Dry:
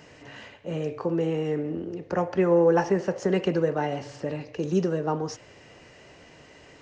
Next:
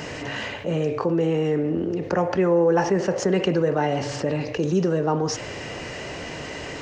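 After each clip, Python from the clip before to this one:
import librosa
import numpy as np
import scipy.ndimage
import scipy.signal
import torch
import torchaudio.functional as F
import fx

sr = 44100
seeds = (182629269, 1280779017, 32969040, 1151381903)

y = fx.env_flatten(x, sr, amount_pct=50)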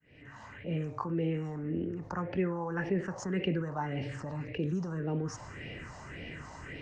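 y = fx.fade_in_head(x, sr, length_s=0.8)
y = fx.phaser_stages(y, sr, stages=4, low_hz=410.0, high_hz=1100.0, hz=1.8, feedback_pct=45)
y = fx.high_shelf(y, sr, hz=5000.0, db=-9.5)
y = y * 10.0 ** (-7.0 / 20.0)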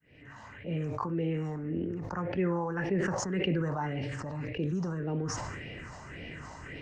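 y = fx.sustainer(x, sr, db_per_s=25.0)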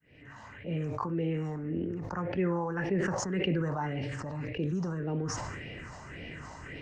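y = x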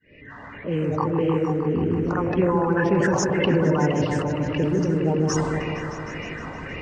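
y = fx.spec_quant(x, sr, step_db=30)
y = fx.echo_opening(y, sr, ms=155, hz=750, octaves=1, feedback_pct=70, wet_db=-3)
y = fx.env_lowpass(y, sr, base_hz=3000.0, full_db=-27.0)
y = y * 10.0 ** (8.5 / 20.0)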